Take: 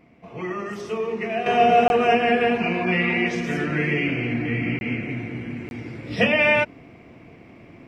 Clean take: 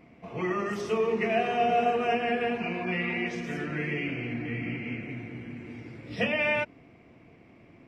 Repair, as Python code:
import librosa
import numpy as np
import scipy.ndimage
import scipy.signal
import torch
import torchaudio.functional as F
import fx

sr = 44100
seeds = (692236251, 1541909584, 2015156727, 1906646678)

y = fx.fix_interpolate(x, sr, at_s=(1.88, 4.79, 5.69), length_ms=21.0)
y = fx.gain(y, sr, db=fx.steps((0.0, 0.0), (1.46, -8.5)))